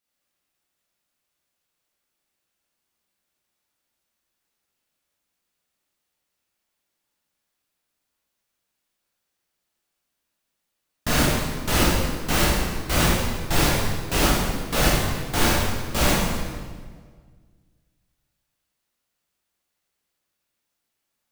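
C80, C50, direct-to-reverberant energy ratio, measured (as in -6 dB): 1.5 dB, -1.5 dB, -6.5 dB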